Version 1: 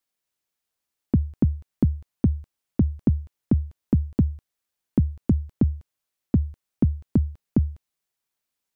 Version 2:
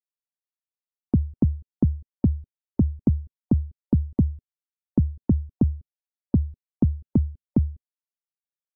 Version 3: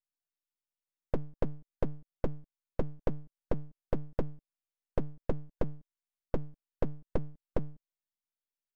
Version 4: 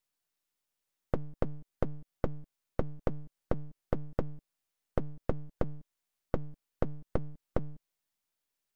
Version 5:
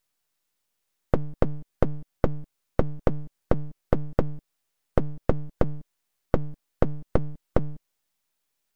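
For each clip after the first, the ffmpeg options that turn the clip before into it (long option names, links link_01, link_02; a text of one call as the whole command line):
ffmpeg -i in.wav -af "afftdn=noise_reduction=25:noise_floor=-43" out.wav
ffmpeg -i in.wav -af "lowshelf=frequency=61:gain=-11.5,acompressor=threshold=-19dB:ratio=6,aeval=exprs='abs(val(0))':channel_layout=same,volume=-4dB" out.wav
ffmpeg -i in.wav -af "acompressor=threshold=-35dB:ratio=6,volume=8.5dB" out.wav
ffmpeg -i in.wav -af "aeval=exprs='max(val(0),0)':channel_layout=same,volume=9dB" out.wav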